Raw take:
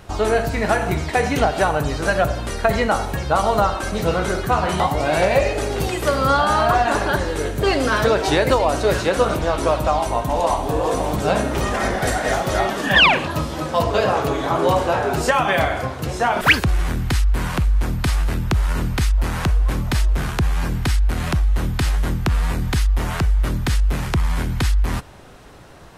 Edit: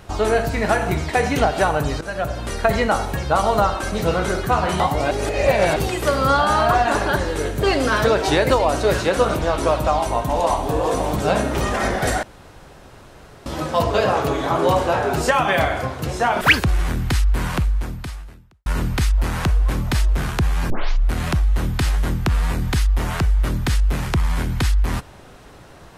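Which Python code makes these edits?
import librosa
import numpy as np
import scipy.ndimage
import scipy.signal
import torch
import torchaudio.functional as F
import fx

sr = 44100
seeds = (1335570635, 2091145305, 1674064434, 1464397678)

y = fx.edit(x, sr, fx.fade_in_from(start_s=2.01, length_s=0.52, floor_db=-14.0),
    fx.reverse_span(start_s=5.11, length_s=0.65),
    fx.room_tone_fill(start_s=12.23, length_s=1.23),
    fx.fade_out_span(start_s=17.57, length_s=1.09, curve='qua'),
    fx.tape_start(start_s=20.7, length_s=0.41), tone=tone)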